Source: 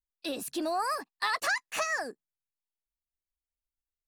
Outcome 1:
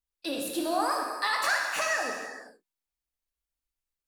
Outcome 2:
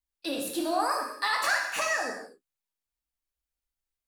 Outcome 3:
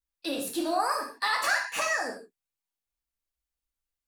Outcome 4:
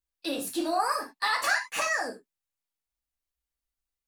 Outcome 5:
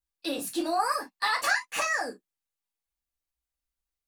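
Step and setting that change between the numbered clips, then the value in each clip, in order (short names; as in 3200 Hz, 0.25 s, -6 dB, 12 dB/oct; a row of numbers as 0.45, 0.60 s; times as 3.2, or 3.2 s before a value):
non-linear reverb, gate: 510, 290, 190, 120, 80 ms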